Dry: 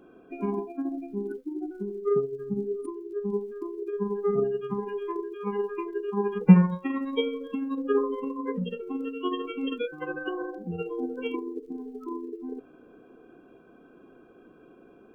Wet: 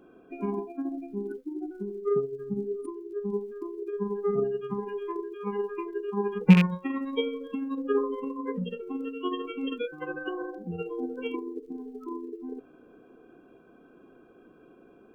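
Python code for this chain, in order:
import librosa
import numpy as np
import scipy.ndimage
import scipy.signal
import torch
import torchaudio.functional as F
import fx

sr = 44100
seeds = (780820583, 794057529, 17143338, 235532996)

y = fx.rattle_buzz(x, sr, strikes_db=-17.0, level_db=-14.0)
y = y * 10.0 ** (-1.5 / 20.0)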